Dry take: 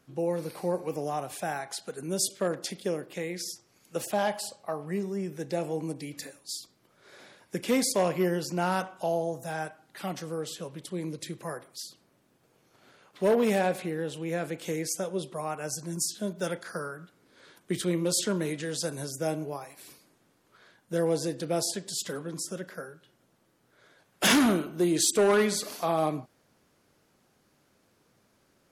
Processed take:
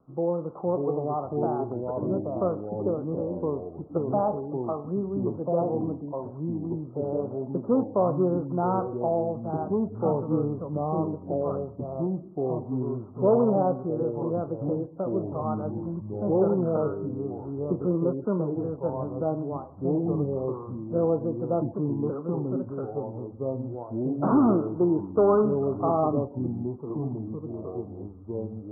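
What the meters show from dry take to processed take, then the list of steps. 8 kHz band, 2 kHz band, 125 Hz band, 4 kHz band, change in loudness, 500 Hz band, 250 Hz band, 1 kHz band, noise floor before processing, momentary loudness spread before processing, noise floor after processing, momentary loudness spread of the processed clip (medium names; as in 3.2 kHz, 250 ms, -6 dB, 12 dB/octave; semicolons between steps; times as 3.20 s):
under -40 dB, under -15 dB, +7.5 dB, under -40 dB, +2.0 dB, +4.5 dB, +5.0 dB, +3.0 dB, -68 dBFS, 15 LU, -43 dBFS, 10 LU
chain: steep low-pass 1.3 kHz 96 dB/octave; ever faster or slower copies 559 ms, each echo -3 st, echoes 3; trim +2.5 dB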